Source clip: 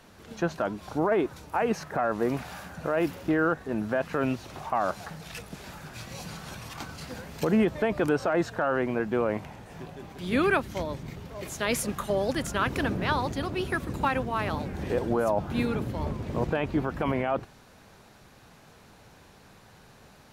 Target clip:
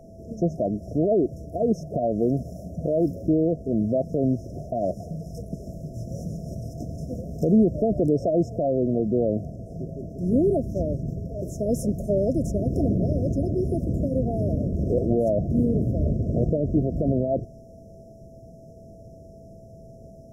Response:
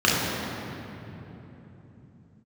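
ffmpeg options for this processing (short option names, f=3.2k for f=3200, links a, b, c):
-filter_complex "[0:a]bass=f=250:g=5,treble=f=4k:g=-13,afftfilt=real='re*(1-between(b*sr/4096,720,5100))':imag='im*(1-between(b*sr/4096,720,5100))':win_size=4096:overlap=0.75,asplit=2[a][b];[b]alimiter=limit=-23dB:level=0:latency=1:release=66,volume=-0.5dB[c];[a][c]amix=inputs=2:normalize=0,aeval=exprs='val(0)+0.00398*sin(2*PI*660*n/s)':c=same"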